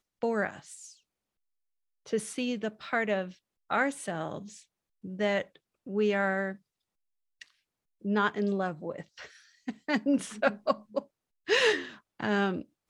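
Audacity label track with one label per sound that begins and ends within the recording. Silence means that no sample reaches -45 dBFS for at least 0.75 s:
2.060000	6.560000	sound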